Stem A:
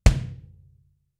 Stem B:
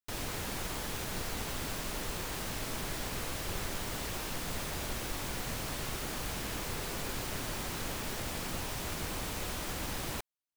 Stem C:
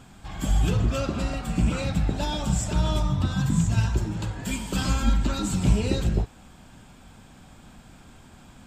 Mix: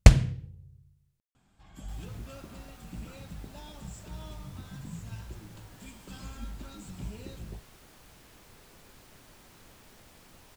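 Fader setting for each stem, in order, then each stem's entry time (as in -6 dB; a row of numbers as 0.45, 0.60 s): +2.5, -18.0, -19.0 dB; 0.00, 1.80, 1.35 s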